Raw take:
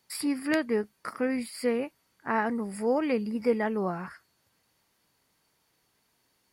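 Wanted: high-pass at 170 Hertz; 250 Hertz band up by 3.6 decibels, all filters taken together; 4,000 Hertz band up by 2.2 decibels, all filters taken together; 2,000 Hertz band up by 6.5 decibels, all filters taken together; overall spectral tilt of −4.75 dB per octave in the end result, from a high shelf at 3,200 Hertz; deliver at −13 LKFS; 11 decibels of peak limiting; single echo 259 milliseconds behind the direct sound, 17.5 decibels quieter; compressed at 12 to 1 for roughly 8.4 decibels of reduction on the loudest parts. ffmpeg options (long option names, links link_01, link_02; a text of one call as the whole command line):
ffmpeg -i in.wav -af "highpass=170,equalizer=frequency=250:width_type=o:gain=5,equalizer=frequency=2000:width_type=o:gain=8,highshelf=frequency=3200:gain=-3.5,equalizer=frequency=4000:width_type=o:gain=3.5,acompressor=threshold=-26dB:ratio=12,alimiter=level_in=0.5dB:limit=-24dB:level=0:latency=1,volume=-0.5dB,aecho=1:1:259:0.133,volume=21.5dB" out.wav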